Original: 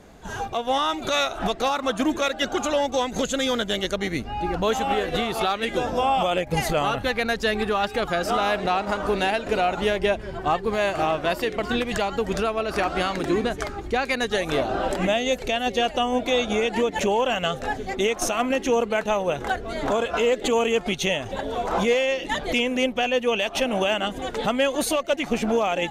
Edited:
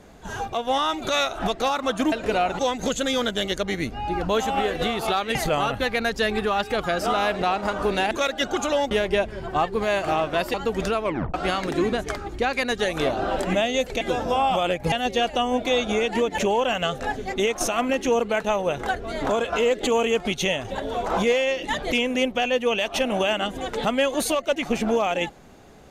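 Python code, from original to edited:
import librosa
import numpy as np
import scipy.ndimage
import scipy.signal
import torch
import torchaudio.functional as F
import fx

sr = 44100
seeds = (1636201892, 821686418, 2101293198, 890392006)

y = fx.edit(x, sr, fx.swap(start_s=2.12, length_s=0.8, other_s=9.35, other_length_s=0.47),
    fx.move(start_s=5.68, length_s=0.91, to_s=15.53),
    fx.cut(start_s=11.45, length_s=0.61),
    fx.tape_stop(start_s=12.56, length_s=0.3), tone=tone)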